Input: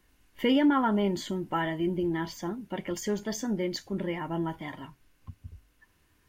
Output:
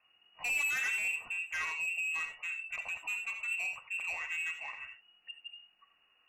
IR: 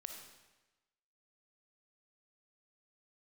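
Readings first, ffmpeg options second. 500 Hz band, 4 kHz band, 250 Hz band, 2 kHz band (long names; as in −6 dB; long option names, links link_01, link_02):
−28.0 dB, −6.5 dB, below −40 dB, +7.5 dB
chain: -filter_complex "[0:a]lowpass=frequency=2500:width_type=q:width=0.5098,lowpass=frequency=2500:width_type=q:width=0.6013,lowpass=frequency=2500:width_type=q:width=0.9,lowpass=frequency=2500:width_type=q:width=2.563,afreqshift=-2900,asoftclip=type=tanh:threshold=-27.5dB[link_01];[1:a]atrim=start_sample=2205,atrim=end_sample=3087,asetrate=30870,aresample=44100[link_02];[link_01][link_02]afir=irnorm=-1:irlink=0"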